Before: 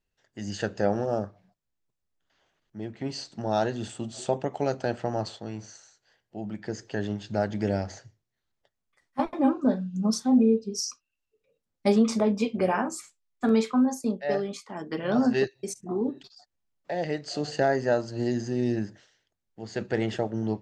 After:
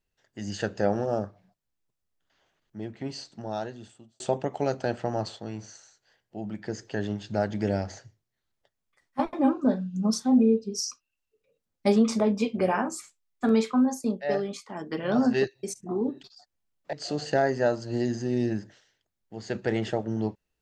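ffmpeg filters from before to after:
-filter_complex "[0:a]asplit=3[s0][s1][s2];[s0]atrim=end=4.2,asetpts=PTS-STARTPTS,afade=t=out:st=2.78:d=1.42[s3];[s1]atrim=start=4.2:end=16.932,asetpts=PTS-STARTPTS,afade=t=in:d=0.004:c=hsin[s4];[s2]atrim=start=17.188[s5];[s3][s4]concat=n=2:v=0:a=1[s6];[s6][s5]acrossfade=d=0.004:c1=hsin:c2=hsin"

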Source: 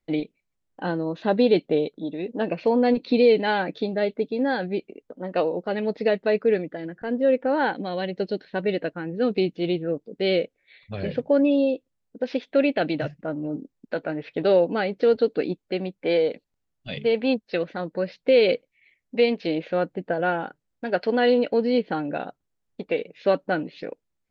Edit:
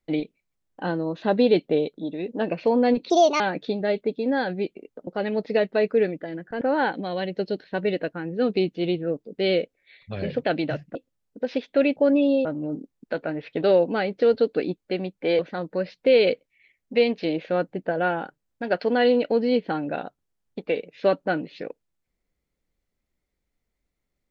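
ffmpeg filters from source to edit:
-filter_complex "[0:a]asplit=10[s0][s1][s2][s3][s4][s5][s6][s7][s8][s9];[s0]atrim=end=3.104[s10];[s1]atrim=start=3.1:end=3.53,asetpts=PTS-STARTPTS,asetrate=63063,aresample=44100[s11];[s2]atrim=start=3.526:end=5.202[s12];[s3]atrim=start=5.578:end=7.122[s13];[s4]atrim=start=7.418:end=11.252[s14];[s5]atrim=start=12.748:end=13.262[s15];[s6]atrim=start=11.738:end=12.752[s16];[s7]atrim=start=11.248:end=11.742[s17];[s8]atrim=start=13.258:end=16.202[s18];[s9]atrim=start=17.608[s19];[s10][s11]acrossfade=d=0.004:c1=hsin:c2=hsin[s20];[s20][s12]acrossfade=d=0.004:c1=hsin:c2=hsin[s21];[s21][s13]acrossfade=d=0.004:c1=hsin:c2=hsin[s22];[s22][s14]acrossfade=d=0.004:c1=hsin:c2=hsin[s23];[s23][s15]acrossfade=d=0.004:c1=hsin:c2=hsin[s24];[s24][s16]acrossfade=d=0.004:c1=hsin:c2=hsin[s25];[s25][s17]acrossfade=d=0.004:c1=hsin:c2=hsin[s26];[s26][s18]acrossfade=d=0.004:c1=hsin:c2=hsin[s27];[s27][s19]acrossfade=d=0.004:c1=hsin:c2=hsin"

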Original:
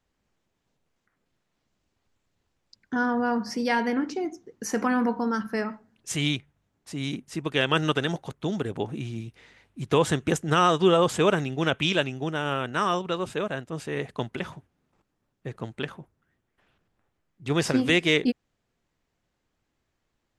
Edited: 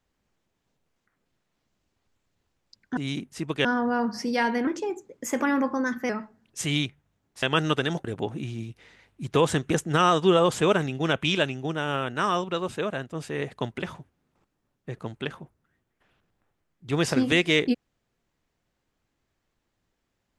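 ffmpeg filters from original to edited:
-filter_complex "[0:a]asplit=7[s0][s1][s2][s3][s4][s5][s6];[s0]atrim=end=2.972[s7];[s1]atrim=start=6.928:end=7.612[s8];[s2]atrim=start=2.968:end=3.994[s9];[s3]atrim=start=3.99:end=5.6,asetpts=PTS-STARTPTS,asetrate=49833,aresample=44100[s10];[s4]atrim=start=5.596:end=6.932[s11];[s5]atrim=start=7.608:end=8.232[s12];[s6]atrim=start=8.618[s13];[s7][s8]acrossfade=d=0.004:c1=hsin:c2=hsin[s14];[s14][s9]acrossfade=d=0.004:c1=hsin:c2=hsin[s15];[s15][s10]acrossfade=d=0.004:c1=hsin:c2=hsin[s16];[s16][s11]acrossfade=d=0.004:c1=hsin:c2=hsin[s17];[s17][s12]acrossfade=d=0.004:c1=hsin:c2=hsin[s18];[s18][s13]acrossfade=d=0.004:c1=hsin:c2=hsin"

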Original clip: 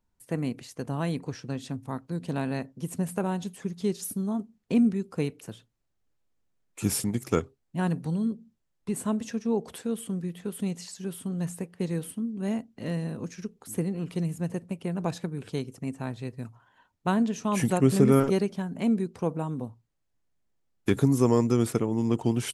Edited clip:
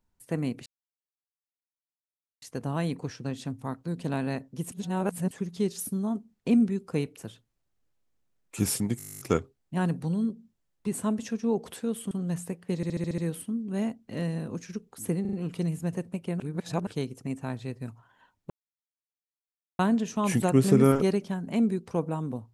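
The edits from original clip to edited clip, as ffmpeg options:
-filter_complex "[0:a]asplit=28[s0][s1][s2][s3][s4][s5][s6][s7][s8][s9][s10][s11][s12][s13][s14][s15][s16][s17][s18][s19][s20][s21][s22][s23][s24][s25][s26][s27];[s0]atrim=end=0.66,asetpts=PTS-STARTPTS,afade=t=out:st=0.656:d=0.004:c=hsin,apad=pad_dur=1.76[s28];[s1]atrim=start=0.66:end=2.962,asetpts=PTS-STARTPTS,afade=t=in:d=0.004:c=hsin[s29];[s2]atrim=start=2.958:end=3.552,asetpts=PTS-STARTPTS,areverse[s30];[s3]atrim=start=3.548:end=7.242[s31];[s4]atrim=start=7.218:end=7.242[s32];[s5]atrim=start=7.218:end=7.242[s33];[s6]atrim=start=7.218:end=7.242[s34];[s7]atrim=start=7.218:end=7.242[s35];[s8]atrim=start=7.218:end=7.242[s36];[s9]atrim=start=7.218:end=7.242[s37];[s10]atrim=start=7.218:end=7.242[s38];[s11]atrim=start=7.218:end=7.242[s39];[s12]atrim=start=7.218:end=7.242[s40];[s13]atrim=start=7.218:end=7.242[s41];[s14]atrim=start=7.218:end=10.132[s42];[s15]atrim=start=11.218:end=11.942[s43];[s16]atrim=start=11.868:end=11.942[s44];[s17]atrim=start=11.868:end=11.942[s45];[s18]atrim=start=11.868:end=11.942[s46];[s19]atrim=start=11.868:end=11.942[s47];[s20]atrim=start=11.868:end=11.942[s48];[s21]atrim=start=11.868:end=13.942[s49];[s22]atrim=start=13.898:end=13.942[s50];[s23]atrim=start=13.898:end=13.942[s51];[s24]atrim=start=13.898:end=14.972[s52];[s25]atrim=start=14.968:end=15.442,asetpts=PTS-STARTPTS,areverse[s53];[s26]atrim=start=15.438:end=17.07,asetpts=PTS-STARTPTS,afade=t=out:st=1.628:d=0.004:c=hsin,apad=pad_dur=1.29[s54];[s27]atrim=start=17.07,asetpts=PTS-STARTPTS,afade=t=in:d=0.004:c=hsin[s55];[s28][s29]concat=n=2:v=0:a=1[s56];[s56][s30]acrossfade=d=0.004:c1=hsin:c2=hsin[s57];[s57][s31]acrossfade=d=0.004:c1=hsin:c2=hsin[s58];[s58][s32]acrossfade=d=0.004:c1=hsin:c2=hsin[s59];[s59][s33]acrossfade=d=0.004:c1=hsin:c2=hsin[s60];[s60][s34]acrossfade=d=0.004:c1=hsin:c2=hsin[s61];[s61][s35]acrossfade=d=0.004:c1=hsin:c2=hsin[s62];[s62][s36]acrossfade=d=0.004:c1=hsin:c2=hsin[s63];[s63][s37]acrossfade=d=0.004:c1=hsin:c2=hsin[s64];[s64][s38]acrossfade=d=0.004:c1=hsin:c2=hsin[s65];[s65][s39]acrossfade=d=0.004:c1=hsin:c2=hsin[s66];[s66][s40]acrossfade=d=0.004:c1=hsin:c2=hsin[s67];[s67][s41]acrossfade=d=0.004:c1=hsin:c2=hsin[s68];[s68][s42]acrossfade=d=0.004:c1=hsin:c2=hsin[s69];[s69][s43]acrossfade=d=0.004:c1=hsin:c2=hsin[s70];[s70][s44]acrossfade=d=0.004:c1=hsin:c2=hsin[s71];[s71][s45]acrossfade=d=0.004:c1=hsin:c2=hsin[s72];[s72][s46]acrossfade=d=0.004:c1=hsin:c2=hsin[s73];[s73][s47]acrossfade=d=0.004:c1=hsin:c2=hsin[s74];[s74][s48]acrossfade=d=0.004:c1=hsin:c2=hsin[s75];[s75][s49]acrossfade=d=0.004:c1=hsin:c2=hsin[s76];[s76][s50]acrossfade=d=0.004:c1=hsin:c2=hsin[s77];[s77][s51]acrossfade=d=0.004:c1=hsin:c2=hsin[s78];[s78][s52]acrossfade=d=0.004:c1=hsin:c2=hsin[s79];[s79][s53]acrossfade=d=0.004:c1=hsin:c2=hsin[s80];[s54][s55]concat=n=2:v=0:a=1[s81];[s80][s81]acrossfade=d=0.004:c1=hsin:c2=hsin"

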